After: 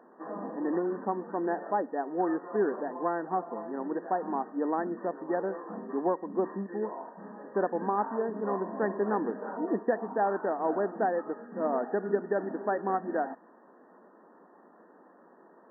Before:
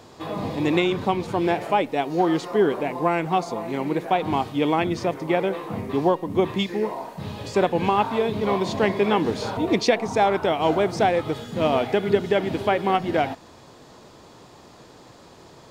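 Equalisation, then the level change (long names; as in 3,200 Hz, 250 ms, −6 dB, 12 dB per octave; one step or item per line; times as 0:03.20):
linear-phase brick-wall band-pass 180–1,900 Hz
−8.0 dB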